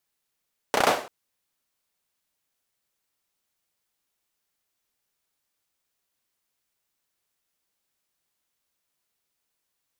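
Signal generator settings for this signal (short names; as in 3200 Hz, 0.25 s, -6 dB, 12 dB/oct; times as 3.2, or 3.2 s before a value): hand clap length 0.34 s, bursts 5, apart 32 ms, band 630 Hz, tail 0.42 s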